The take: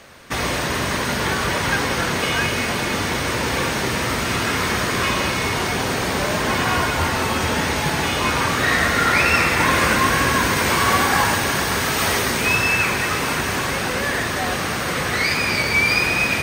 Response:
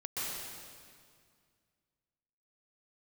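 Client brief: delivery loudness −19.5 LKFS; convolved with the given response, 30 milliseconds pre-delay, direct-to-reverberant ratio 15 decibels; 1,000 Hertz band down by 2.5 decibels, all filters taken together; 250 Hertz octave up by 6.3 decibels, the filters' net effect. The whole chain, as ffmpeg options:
-filter_complex "[0:a]equalizer=frequency=250:width_type=o:gain=8,equalizer=frequency=1000:width_type=o:gain=-3.5,asplit=2[link_01][link_02];[1:a]atrim=start_sample=2205,adelay=30[link_03];[link_02][link_03]afir=irnorm=-1:irlink=0,volume=-19dB[link_04];[link_01][link_04]amix=inputs=2:normalize=0,volume=-1dB"

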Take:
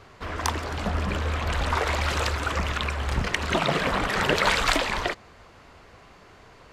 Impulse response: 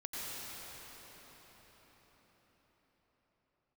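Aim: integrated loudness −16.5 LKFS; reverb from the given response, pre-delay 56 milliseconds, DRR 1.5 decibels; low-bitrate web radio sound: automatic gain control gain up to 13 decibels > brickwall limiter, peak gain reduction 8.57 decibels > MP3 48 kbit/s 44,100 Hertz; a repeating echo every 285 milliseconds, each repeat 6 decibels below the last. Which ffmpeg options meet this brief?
-filter_complex "[0:a]aecho=1:1:285|570|855|1140|1425|1710:0.501|0.251|0.125|0.0626|0.0313|0.0157,asplit=2[link_01][link_02];[1:a]atrim=start_sample=2205,adelay=56[link_03];[link_02][link_03]afir=irnorm=-1:irlink=0,volume=-4dB[link_04];[link_01][link_04]amix=inputs=2:normalize=0,dynaudnorm=maxgain=13dB,alimiter=limit=-12.5dB:level=0:latency=1,volume=8dB" -ar 44100 -c:a libmp3lame -b:a 48k

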